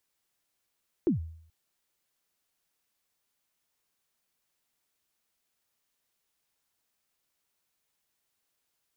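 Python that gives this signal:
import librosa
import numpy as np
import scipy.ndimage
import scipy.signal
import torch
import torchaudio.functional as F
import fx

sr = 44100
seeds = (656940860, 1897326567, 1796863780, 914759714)

y = fx.drum_kick(sr, seeds[0], length_s=0.43, level_db=-19, start_hz=390.0, end_hz=81.0, sweep_ms=123.0, decay_s=0.62, click=False)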